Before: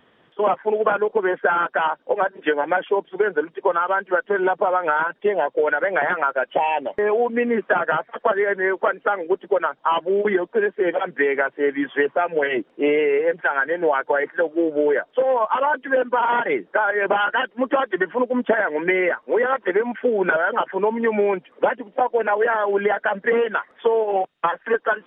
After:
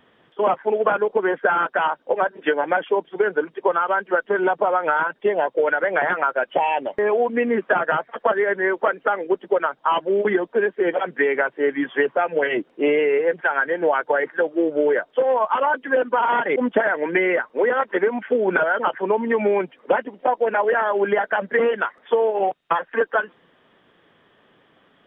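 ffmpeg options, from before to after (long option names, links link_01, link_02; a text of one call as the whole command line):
ffmpeg -i in.wav -filter_complex "[0:a]asplit=2[link_01][link_02];[link_01]atrim=end=16.562[link_03];[link_02]atrim=start=18.288[link_04];[link_03][link_04]acrossfade=duration=0.004:curve1=hsin:curve2=hsin" out.wav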